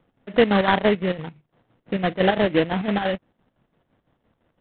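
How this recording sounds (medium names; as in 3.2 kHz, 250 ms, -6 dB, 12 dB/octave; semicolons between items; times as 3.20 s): aliases and images of a low sample rate 2.4 kHz, jitter 20%; chopped level 5.9 Hz, depth 60%, duty 60%; IMA ADPCM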